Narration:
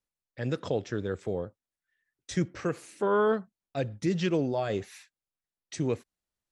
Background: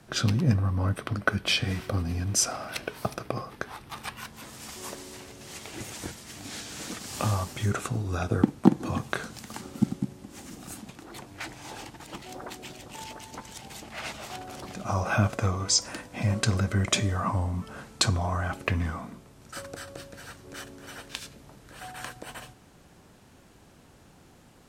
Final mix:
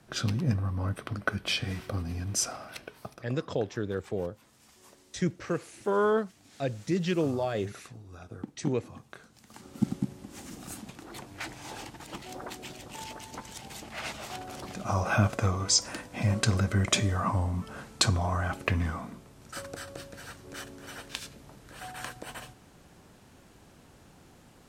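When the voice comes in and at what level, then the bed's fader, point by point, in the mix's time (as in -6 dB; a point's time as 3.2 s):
2.85 s, -0.5 dB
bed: 2.46 s -4.5 dB
3.45 s -17.5 dB
9.31 s -17.5 dB
9.92 s -0.5 dB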